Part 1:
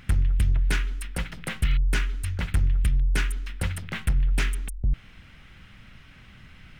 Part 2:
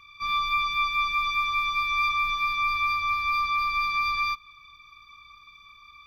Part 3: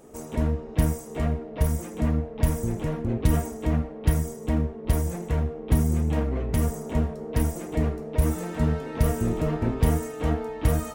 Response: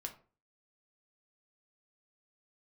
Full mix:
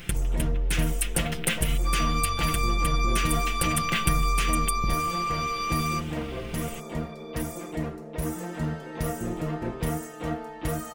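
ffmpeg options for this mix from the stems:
-filter_complex "[0:a]acompressor=threshold=-28dB:ratio=6,aexciter=amount=1.9:drive=5.1:freq=2500,volume=1.5dB,asplit=2[link_01][link_02];[link_02]volume=-8dB[link_03];[1:a]asoftclip=type=tanh:threshold=-27dB,adelay=1650,volume=-0.5dB[link_04];[2:a]lowshelf=frequency=170:gain=-7.5,volume=-3dB[link_05];[3:a]atrim=start_sample=2205[link_06];[link_03][link_06]afir=irnorm=-1:irlink=0[link_07];[link_01][link_04][link_05][link_07]amix=inputs=4:normalize=0,aecho=1:1:5.8:0.61"

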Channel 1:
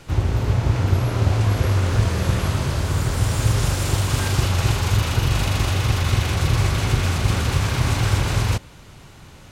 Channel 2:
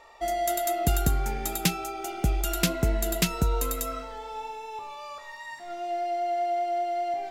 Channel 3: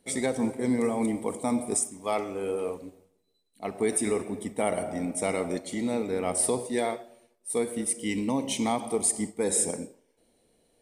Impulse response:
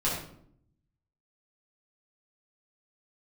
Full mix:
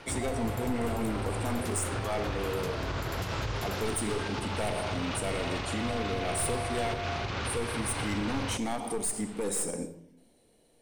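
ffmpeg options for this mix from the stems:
-filter_complex "[0:a]bass=frequency=250:gain=-10,treble=frequency=4000:gain=-5,alimiter=limit=-18.5dB:level=0:latency=1:release=385,lowpass=frequency=5700:width=0.5412,lowpass=frequency=5700:width=1.3066,volume=-0.5dB[link_01];[1:a]alimiter=limit=-23.5dB:level=0:latency=1:release=205,volume=-5.5dB[link_02];[2:a]aeval=exprs='clip(val(0),-1,0.0473)':channel_layout=same,volume=1dB,asplit=2[link_03][link_04];[link_04]volume=-20.5dB[link_05];[3:a]atrim=start_sample=2205[link_06];[link_05][link_06]afir=irnorm=-1:irlink=0[link_07];[link_01][link_02][link_03][link_07]amix=inputs=4:normalize=0,volume=18dB,asoftclip=hard,volume=-18dB,alimiter=limit=-23.5dB:level=0:latency=1:release=125"

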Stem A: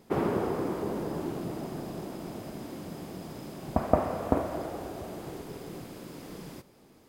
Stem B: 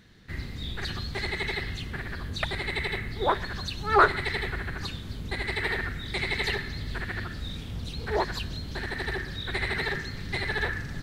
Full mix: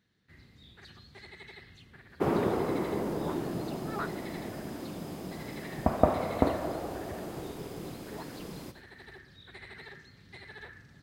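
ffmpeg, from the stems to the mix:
ffmpeg -i stem1.wav -i stem2.wav -filter_complex "[0:a]agate=range=-10dB:threshold=-54dB:ratio=16:detection=peak,adelay=2100,volume=0.5dB[link_01];[1:a]highpass=84,volume=-18dB[link_02];[link_01][link_02]amix=inputs=2:normalize=0" out.wav

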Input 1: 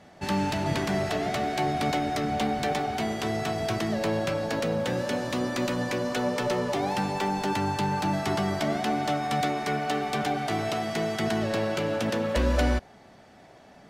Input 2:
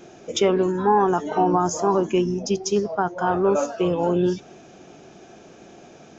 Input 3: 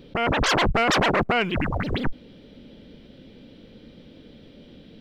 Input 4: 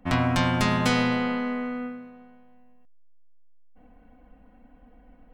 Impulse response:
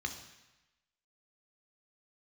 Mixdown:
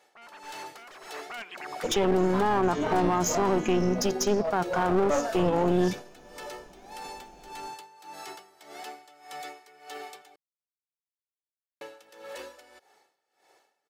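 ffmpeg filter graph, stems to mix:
-filter_complex "[0:a]highpass=460,aecho=1:1:2.3:0.61,aeval=exprs='val(0)*pow(10,-19*(0.5-0.5*cos(2*PI*1.7*n/s))/20)':channel_layout=same,volume=-9dB,asplit=3[link_01][link_02][link_03];[link_01]atrim=end=10.36,asetpts=PTS-STARTPTS,afade=type=out:start_time=10.356:duration=0.004:curve=hsin[link_04];[link_02]atrim=start=10.36:end=11.81,asetpts=PTS-STARTPTS,volume=0[link_05];[link_03]atrim=start=11.81,asetpts=PTS-STARTPTS,afade=type=in:duration=0.004:curve=hsin[link_06];[link_04][link_05][link_06]concat=n=3:v=0:a=1[link_07];[1:a]agate=range=-12dB:threshold=-35dB:ratio=16:detection=peak,alimiter=limit=-16.5dB:level=0:latency=1:release=63,aeval=exprs='clip(val(0),-1,0.0335)':channel_layout=same,adelay=1550,volume=2.5dB[link_08];[2:a]highpass=940,aeval=exprs='(mod(5.31*val(0)+1,2)-1)/5.31':channel_layout=same,asplit=2[link_09][link_10];[link_10]highpass=frequency=720:poles=1,volume=14dB,asoftclip=type=tanh:threshold=-14.5dB[link_11];[link_09][link_11]amix=inputs=2:normalize=0,lowpass=frequency=1400:poles=1,volume=-6dB,volume=-11.5dB,afade=type=in:start_time=1.08:duration=0.4:silence=0.237137[link_12];[3:a]adelay=2350,volume=-4.5dB[link_13];[link_07][link_13]amix=inputs=2:normalize=0,highshelf=frequency=6700:gain=12,alimiter=level_in=7.5dB:limit=-24dB:level=0:latency=1:release=10,volume=-7.5dB,volume=0dB[link_14];[link_08][link_12][link_14]amix=inputs=3:normalize=0"

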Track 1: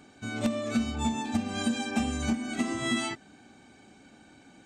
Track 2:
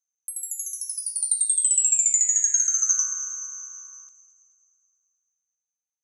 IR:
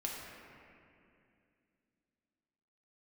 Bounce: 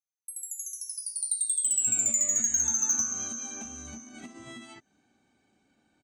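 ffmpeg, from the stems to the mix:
-filter_complex "[0:a]acompressor=threshold=-37dB:ratio=20,adelay=1650,volume=-4dB[link_01];[1:a]highshelf=frequency=6800:gain=-8.5,volume=0dB[link_02];[link_01][link_02]amix=inputs=2:normalize=0,agate=range=-11dB:threshold=-46dB:ratio=16:detection=peak,asoftclip=type=tanh:threshold=-15dB"

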